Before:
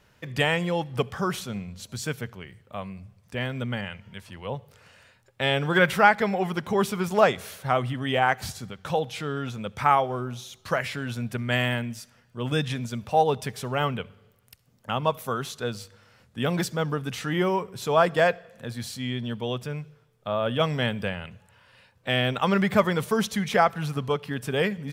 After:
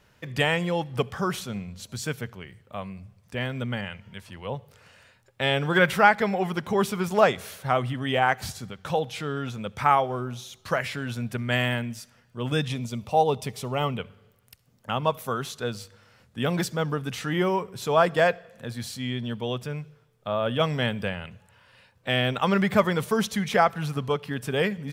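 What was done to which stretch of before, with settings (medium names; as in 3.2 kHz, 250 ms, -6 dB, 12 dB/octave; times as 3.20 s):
12.67–13.99 s: peaking EQ 1.6 kHz -14 dB 0.28 oct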